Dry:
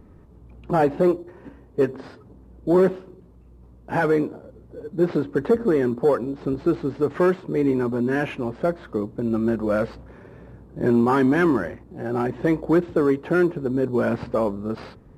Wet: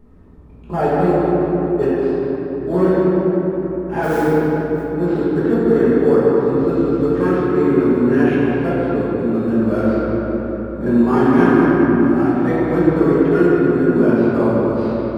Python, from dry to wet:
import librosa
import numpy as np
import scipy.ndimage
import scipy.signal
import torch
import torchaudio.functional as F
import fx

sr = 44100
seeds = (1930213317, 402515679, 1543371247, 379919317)

y = fx.mod_noise(x, sr, seeds[0], snr_db=21, at=(4.02, 4.82), fade=0.02)
y = fx.echo_filtered(y, sr, ms=198, feedback_pct=62, hz=4100.0, wet_db=-7.0)
y = fx.room_shoebox(y, sr, seeds[1], volume_m3=220.0, walls='hard', distance_m=1.3)
y = y * librosa.db_to_amplitude(-5.0)